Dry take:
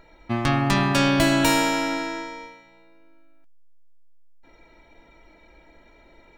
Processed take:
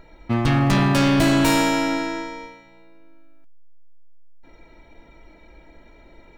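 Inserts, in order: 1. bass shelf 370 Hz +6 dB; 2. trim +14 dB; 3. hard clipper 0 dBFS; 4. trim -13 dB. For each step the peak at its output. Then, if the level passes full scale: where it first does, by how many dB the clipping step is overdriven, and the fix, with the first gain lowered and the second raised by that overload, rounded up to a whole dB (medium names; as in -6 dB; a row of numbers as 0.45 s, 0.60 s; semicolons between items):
-4.0 dBFS, +10.0 dBFS, 0.0 dBFS, -13.0 dBFS; step 2, 10.0 dB; step 2 +4 dB, step 4 -3 dB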